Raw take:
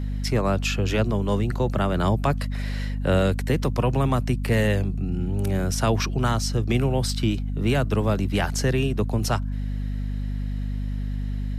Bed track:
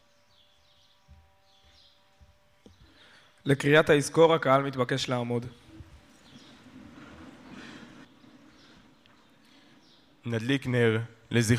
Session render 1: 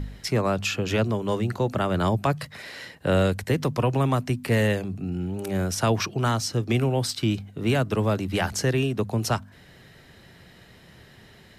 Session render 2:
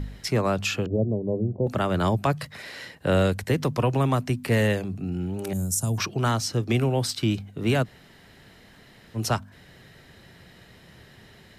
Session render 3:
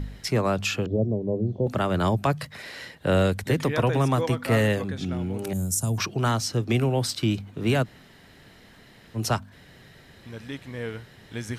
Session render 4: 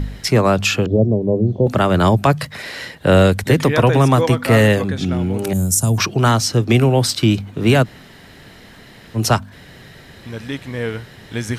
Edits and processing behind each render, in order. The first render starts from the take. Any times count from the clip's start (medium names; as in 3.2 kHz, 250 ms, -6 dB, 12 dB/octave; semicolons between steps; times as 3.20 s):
de-hum 50 Hz, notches 5
0.86–1.67 s: steep low-pass 630 Hz; 5.53–5.98 s: FFT filter 170 Hz 0 dB, 380 Hz -12 dB, 1 kHz -15 dB, 2 kHz -25 dB, 5 kHz -9 dB, 7.1 kHz +9 dB; 7.85–9.17 s: room tone, crossfade 0.06 s
add bed track -9.5 dB
trim +9.5 dB; peak limiter -2 dBFS, peak gain reduction 1.5 dB